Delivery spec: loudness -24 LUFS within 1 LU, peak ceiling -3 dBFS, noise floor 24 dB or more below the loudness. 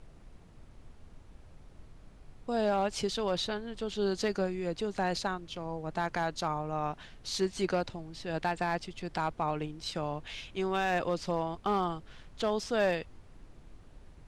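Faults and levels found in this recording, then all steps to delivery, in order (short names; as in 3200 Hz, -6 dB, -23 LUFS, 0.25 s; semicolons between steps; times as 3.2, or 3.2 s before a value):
clipped 0.2%; flat tops at -21.0 dBFS; noise floor -54 dBFS; noise floor target -57 dBFS; loudness -33.0 LUFS; peak -21.0 dBFS; loudness target -24.0 LUFS
-> clip repair -21 dBFS; noise print and reduce 6 dB; gain +9 dB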